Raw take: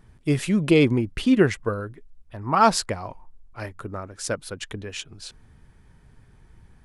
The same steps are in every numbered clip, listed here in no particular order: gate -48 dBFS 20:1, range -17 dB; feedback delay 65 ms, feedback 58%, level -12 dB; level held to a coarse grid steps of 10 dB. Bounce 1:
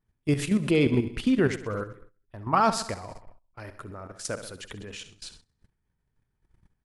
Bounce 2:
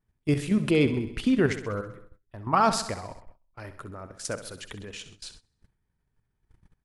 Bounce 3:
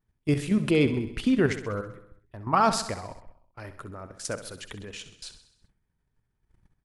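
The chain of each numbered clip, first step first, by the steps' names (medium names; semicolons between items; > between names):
feedback delay > level held to a coarse grid > gate; level held to a coarse grid > feedback delay > gate; level held to a coarse grid > gate > feedback delay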